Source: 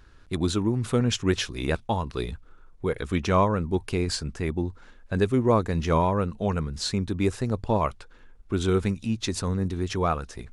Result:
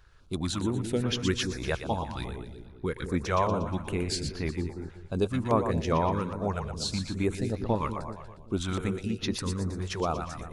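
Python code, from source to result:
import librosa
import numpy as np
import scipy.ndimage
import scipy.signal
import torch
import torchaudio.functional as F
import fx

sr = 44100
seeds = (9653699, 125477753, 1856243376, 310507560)

y = fx.echo_split(x, sr, split_hz=440.0, low_ms=190, high_ms=119, feedback_pct=52, wet_db=-7.0)
y = fx.hpss(y, sr, part='percussive', gain_db=5)
y = fx.filter_held_notch(y, sr, hz=4.9, low_hz=260.0, high_hz=8000.0)
y = y * librosa.db_to_amplitude(-6.5)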